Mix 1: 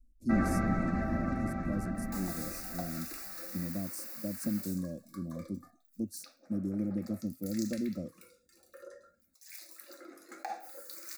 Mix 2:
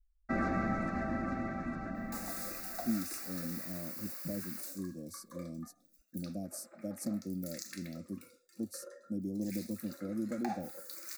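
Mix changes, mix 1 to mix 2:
speech: entry +2.60 s; master: add bass shelf 170 Hz -9 dB

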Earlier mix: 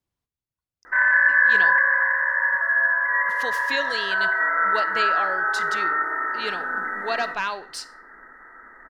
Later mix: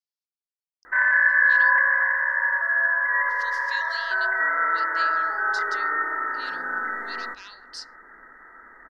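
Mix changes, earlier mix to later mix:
speech: add band-pass filter 5 kHz, Q 3.1; reverb: off

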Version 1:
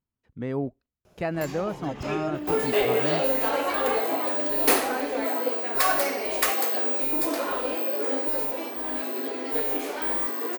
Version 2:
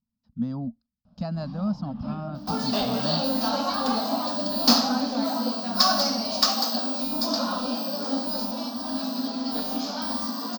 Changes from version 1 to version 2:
first sound: add distance through air 420 m; second sound +6.5 dB; master: add FFT filter 140 Hz 0 dB, 230 Hz +13 dB, 370 Hz -27 dB, 610 Hz -6 dB, 1.3 kHz -5 dB, 2.1 kHz -22 dB, 5 kHz +11 dB, 9.8 kHz -29 dB, 14 kHz -12 dB

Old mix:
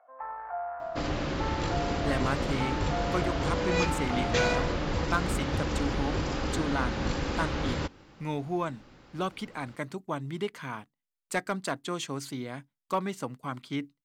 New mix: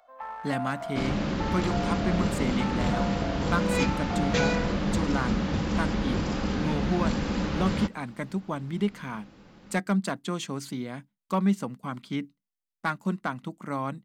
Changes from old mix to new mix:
speech: entry -1.60 s; first sound: remove low-pass 1.8 kHz 24 dB/octave; master: add peaking EQ 200 Hz +14.5 dB 0.33 oct

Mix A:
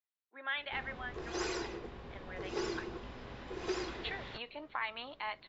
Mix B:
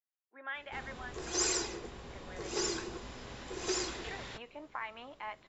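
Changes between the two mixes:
speech: add distance through air 440 m; background: remove distance through air 210 m

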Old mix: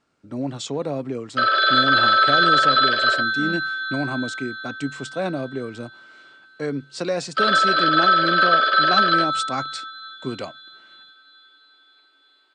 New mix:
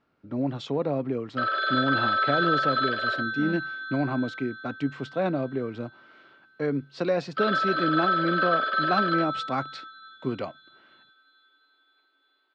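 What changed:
background -6.5 dB; master: add distance through air 250 m

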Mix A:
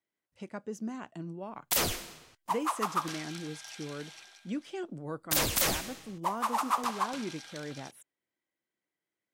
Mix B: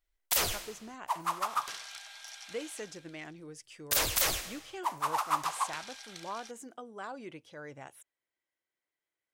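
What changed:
background: entry -1.40 s; master: add peaking EQ 210 Hz -12.5 dB 1.5 oct

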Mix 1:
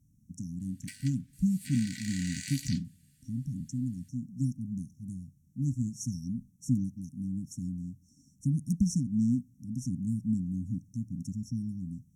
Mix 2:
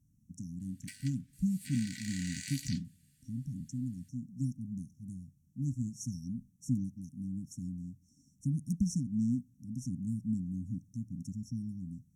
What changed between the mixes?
speech -4.0 dB; background: send off

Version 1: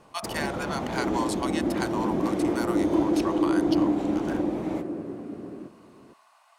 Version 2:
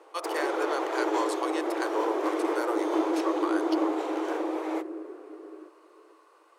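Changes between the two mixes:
speech: remove Chebyshev high-pass 650 Hz, order 6; first sound +7.5 dB; master: add rippled Chebyshev high-pass 310 Hz, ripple 6 dB

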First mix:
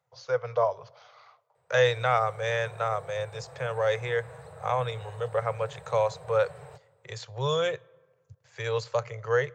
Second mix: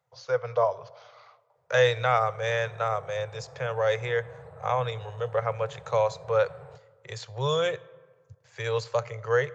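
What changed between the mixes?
speech: send +7.5 dB; background: add low-pass 1.1 kHz 6 dB/octave

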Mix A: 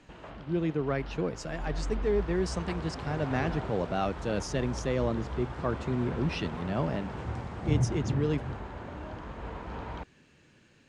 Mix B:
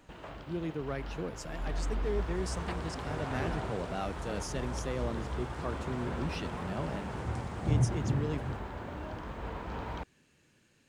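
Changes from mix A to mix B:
speech -7.0 dB; master: remove distance through air 78 m

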